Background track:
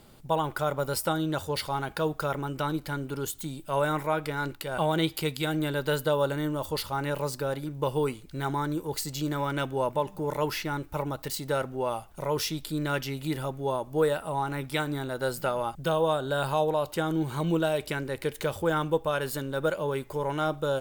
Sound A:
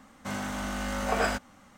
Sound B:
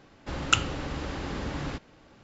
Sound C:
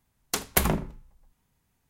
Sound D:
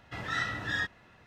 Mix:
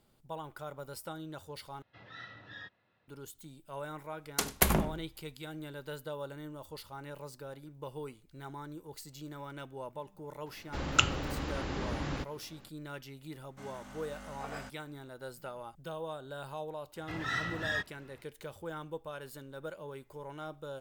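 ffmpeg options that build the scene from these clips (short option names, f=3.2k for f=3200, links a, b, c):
-filter_complex "[4:a]asplit=2[a][b];[0:a]volume=-15dB[c];[a]highpass=100,equalizer=f=110:t=q:w=4:g=4,equalizer=f=540:t=q:w=4:g=5,equalizer=f=3.8k:t=q:w=4:g=4,lowpass=f=5k:w=0.5412,lowpass=f=5k:w=1.3066[d];[3:a]aecho=1:1:96:0.133[e];[c]asplit=2[f][g];[f]atrim=end=1.824[h];[d]atrim=end=1.26,asetpts=PTS-STARTPTS,volume=-16.5dB[i];[g]atrim=start=3.076[j];[e]atrim=end=1.89,asetpts=PTS-STARTPTS,volume=-3dB,afade=t=in:d=0.004:c=hsin,afade=t=out:st=1.886:d=0.004:c=hsin,adelay=178605S[k];[2:a]atrim=end=2.23,asetpts=PTS-STARTPTS,volume=-2.5dB,afade=t=in:d=0.004:c=hsin,afade=t=out:st=2.226:d=0.004:c=hsin,adelay=10460[l];[1:a]atrim=end=1.77,asetpts=PTS-STARTPTS,volume=-16.5dB,afade=t=in:d=0.004:c=hsin,afade=t=out:st=1.766:d=0.004:c=hsin,adelay=587412S[m];[b]atrim=end=1.26,asetpts=PTS-STARTPTS,volume=-2.5dB,afade=t=in:d=0.004:c=hsin,afade=t=out:st=1.256:d=0.004:c=hsin,adelay=16960[n];[h][i]acrossfade=d=0.004:c1=hsin:c2=hsin[o];[o][j]acrossfade=d=0.004:c1=hsin:c2=hsin[p];[p][k][l][m][n]amix=inputs=5:normalize=0"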